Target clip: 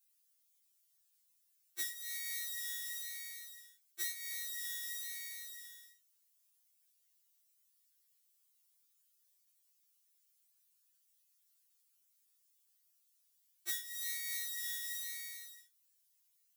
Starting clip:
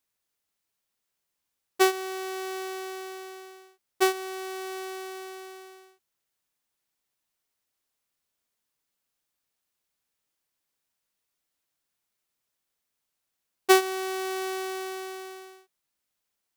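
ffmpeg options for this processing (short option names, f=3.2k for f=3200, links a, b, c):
-af "flanger=delay=22.5:depth=3.7:speed=1,acompressor=threshold=-35dB:ratio=8,aderivative,afftfilt=real='re*2.83*eq(mod(b,8),0)':imag='im*2.83*eq(mod(b,8),0)':win_size=2048:overlap=0.75,volume=10.5dB"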